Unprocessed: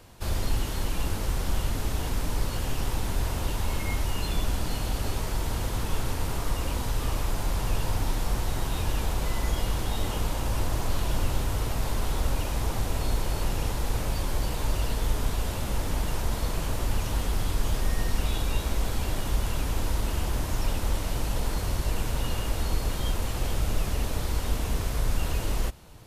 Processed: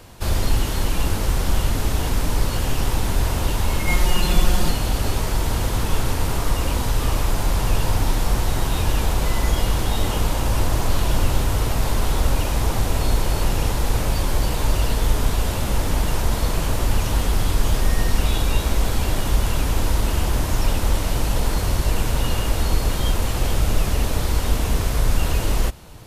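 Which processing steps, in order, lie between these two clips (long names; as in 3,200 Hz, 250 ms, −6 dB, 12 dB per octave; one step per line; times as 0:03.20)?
0:03.87–0:04.71: comb filter 5.6 ms, depth 92%
level +7.5 dB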